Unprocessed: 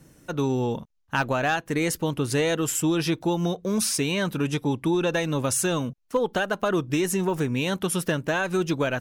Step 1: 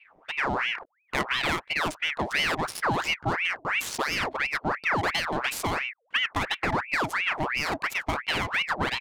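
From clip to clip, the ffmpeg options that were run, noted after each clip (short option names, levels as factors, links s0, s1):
-af "adynamicsmooth=sensitivity=5.5:basefreq=870,aeval=exprs='val(0)*sin(2*PI*1500*n/s+1500*0.7/2.9*sin(2*PI*2.9*n/s))':c=same"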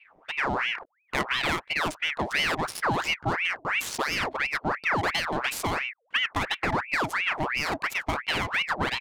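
-af anull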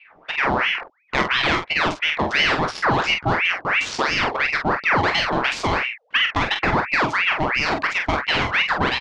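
-filter_complex "[0:a]lowpass=f=5800:w=0.5412,lowpass=f=5800:w=1.3066,asplit=2[s0][s1];[s1]aecho=0:1:22|46:0.316|0.473[s2];[s0][s2]amix=inputs=2:normalize=0,volume=2"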